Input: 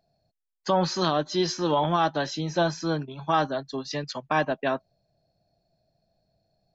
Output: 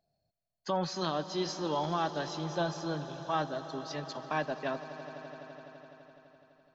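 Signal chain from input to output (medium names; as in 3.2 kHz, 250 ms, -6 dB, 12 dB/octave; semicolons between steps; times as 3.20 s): echo with a slow build-up 84 ms, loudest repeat 5, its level -18 dB; trim -8.5 dB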